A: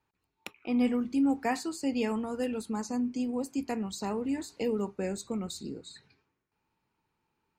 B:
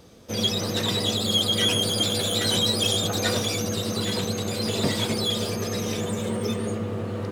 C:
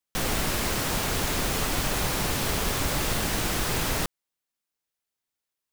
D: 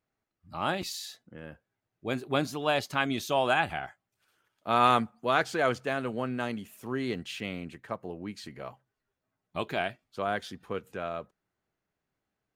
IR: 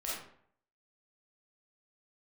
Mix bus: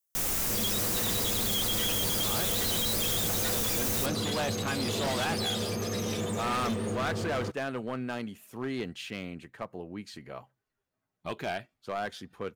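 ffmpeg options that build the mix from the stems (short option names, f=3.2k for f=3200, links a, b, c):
-filter_complex "[1:a]adelay=200,volume=-3.5dB[a];[2:a]aexciter=amount=4:drive=2.7:freq=5.6k,volume=-6dB[b];[3:a]adelay=1700,volume=-1.5dB[c];[a][b][c]amix=inputs=3:normalize=0,volume=27dB,asoftclip=hard,volume=-27dB"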